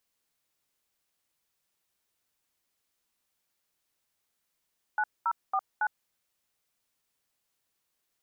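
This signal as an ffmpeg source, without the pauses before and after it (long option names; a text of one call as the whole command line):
ffmpeg -f lavfi -i "aevalsrc='0.0447*clip(min(mod(t,0.277),0.058-mod(t,0.277))/0.002,0,1)*(eq(floor(t/0.277),0)*(sin(2*PI*852*mod(t,0.277))+sin(2*PI*1477*mod(t,0.277)))+eq(floor(t/0.277),1)*(sin(2*PI*941*mod(t,0.277))+sin(2*PI*1336*mod(t,0.277)))+eq(floor(t/0.277),2)*(sin(2*PI*770*mod(t,0.277))+sin(2*PI*1209*mod(t,0.277)))+eq(floor(t/0.277),3)*(sin(2*PI*852*mod(t,0.277))+sin(2*PI*1477*mod(t,0.277))))':duration=1.108:sample_rate=44100" out.wav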